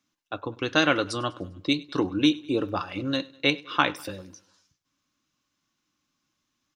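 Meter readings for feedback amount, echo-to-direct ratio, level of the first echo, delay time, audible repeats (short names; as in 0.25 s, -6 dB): 55%, -21.5 dB, -23.0 dB, 0.1 s, 3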